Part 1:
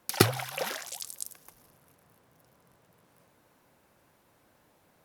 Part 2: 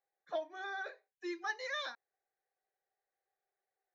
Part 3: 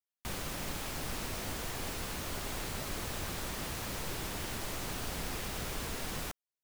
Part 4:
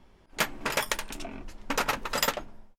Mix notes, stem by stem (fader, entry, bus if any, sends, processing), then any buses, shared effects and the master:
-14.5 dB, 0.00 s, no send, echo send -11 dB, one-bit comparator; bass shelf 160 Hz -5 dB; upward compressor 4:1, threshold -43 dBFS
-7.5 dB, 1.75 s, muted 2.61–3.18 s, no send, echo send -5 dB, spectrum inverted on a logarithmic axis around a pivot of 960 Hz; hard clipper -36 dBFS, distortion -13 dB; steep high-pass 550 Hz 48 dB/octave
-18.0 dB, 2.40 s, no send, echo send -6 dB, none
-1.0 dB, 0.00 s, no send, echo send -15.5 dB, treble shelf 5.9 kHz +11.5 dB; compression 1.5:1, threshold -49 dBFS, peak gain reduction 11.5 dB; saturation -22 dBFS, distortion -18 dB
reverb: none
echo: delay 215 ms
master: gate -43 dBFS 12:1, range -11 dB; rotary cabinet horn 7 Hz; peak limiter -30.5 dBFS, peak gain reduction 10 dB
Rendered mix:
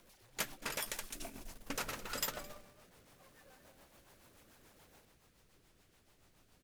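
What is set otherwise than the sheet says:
stem 3: entry 2.40 s -> 1.45 s; master: missing peak limiter -30.5 dBFS, peak gain reduction 10 dB

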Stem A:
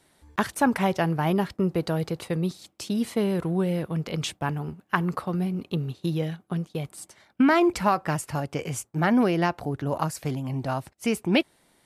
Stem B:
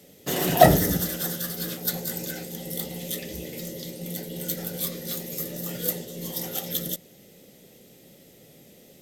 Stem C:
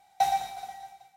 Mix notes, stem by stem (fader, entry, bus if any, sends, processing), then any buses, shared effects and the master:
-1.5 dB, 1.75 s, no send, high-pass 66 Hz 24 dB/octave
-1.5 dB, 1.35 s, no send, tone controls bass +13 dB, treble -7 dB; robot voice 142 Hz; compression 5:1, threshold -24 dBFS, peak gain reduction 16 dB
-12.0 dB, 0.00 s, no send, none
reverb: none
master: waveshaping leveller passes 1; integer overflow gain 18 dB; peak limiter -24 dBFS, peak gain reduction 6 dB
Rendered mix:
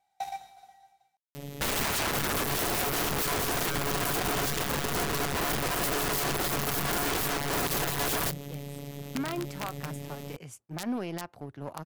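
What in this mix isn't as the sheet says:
stem A -1.5 dB -> -12.5 dB; stem B -1.5 dB -> +10.5 dB

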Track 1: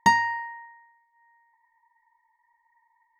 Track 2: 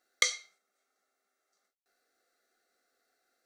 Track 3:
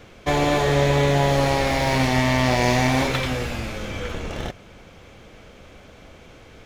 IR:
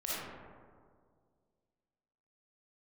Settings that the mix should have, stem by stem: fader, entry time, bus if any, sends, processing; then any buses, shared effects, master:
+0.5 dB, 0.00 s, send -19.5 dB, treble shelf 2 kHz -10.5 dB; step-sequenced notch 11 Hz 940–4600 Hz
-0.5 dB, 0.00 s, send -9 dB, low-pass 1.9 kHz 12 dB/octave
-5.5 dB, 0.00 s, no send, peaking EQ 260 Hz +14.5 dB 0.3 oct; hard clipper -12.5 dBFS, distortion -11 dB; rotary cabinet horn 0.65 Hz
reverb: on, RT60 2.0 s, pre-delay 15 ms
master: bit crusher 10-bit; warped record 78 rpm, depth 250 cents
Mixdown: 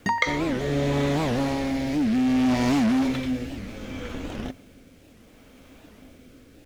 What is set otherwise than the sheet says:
stem 1: send off; stem 2 -0.5 dB -> +7.0 dB

